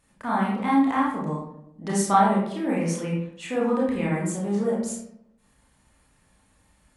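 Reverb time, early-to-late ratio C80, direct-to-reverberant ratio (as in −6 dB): 0.75 s, 5.5 dB, −5.5 dB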